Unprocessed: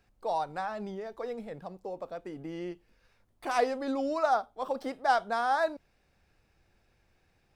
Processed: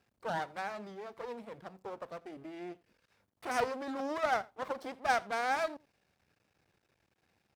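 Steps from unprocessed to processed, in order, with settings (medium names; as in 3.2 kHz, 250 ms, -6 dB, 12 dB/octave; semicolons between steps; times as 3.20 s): half-wave rectifier; high-pass 100 Hz 12 dB/octave; delay 85 ms -24 dB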